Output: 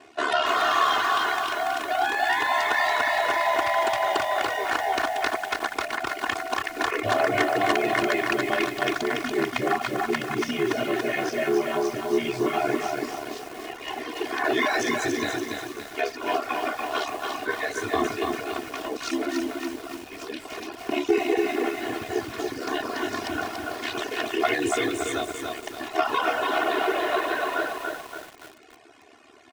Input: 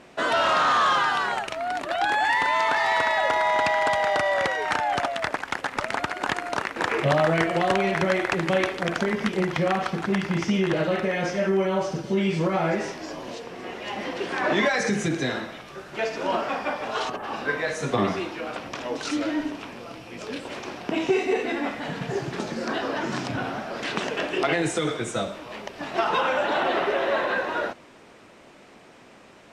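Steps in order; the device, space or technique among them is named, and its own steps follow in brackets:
ring-modulated robot voice (ring modulation 36 Hz; comb filter 2.8 ms, depth 96%)
reverb reduction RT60 0.71 s
high-pass filter 46 Hz 24 dB per octave
low-shelf EQ 120 Hz −10 dB
feedback echo at a low word length 285 ms, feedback 55%, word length 7 bits, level −3 dB

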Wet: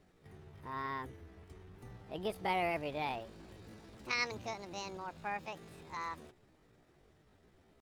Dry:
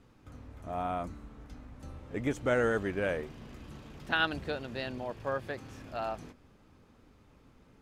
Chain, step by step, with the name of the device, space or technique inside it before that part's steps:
chipmunk voice (pitch shifter +7 semitones)
level −6 dB

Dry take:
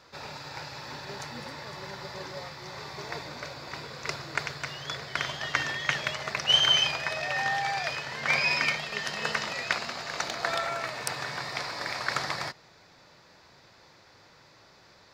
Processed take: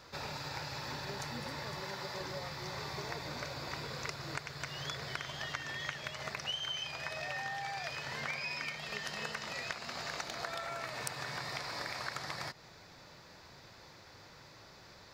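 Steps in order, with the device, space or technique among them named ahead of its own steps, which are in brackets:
0:01.80–0:02.21: high-pass filter 210 Hz 6 dB per octave
ASMR close-microphone chain (low-shelf EQ 140 Hz +6 dB; downward compressor 8 to 1, threshold −37 dBFS, peak gain reduction 19.5 dB; high-shelf EQ 11,000 Hz +8 dB)

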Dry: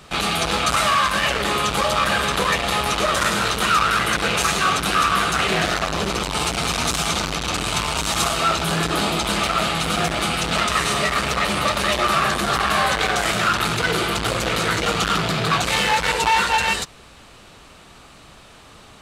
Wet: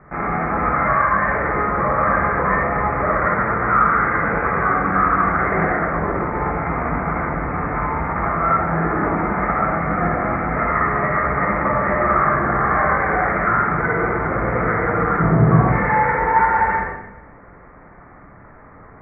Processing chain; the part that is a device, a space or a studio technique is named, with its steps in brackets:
Butterworth low-pass 2,100 Hz 96 dB per octave
0:15.20–0:15.68: tilt shelving filter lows +8.5 dB, about 880 Hz
bathroom (convolution reverb RT60 0.90 s, pre-delay 47 ms, DRR −2 dB)
level −1 dB

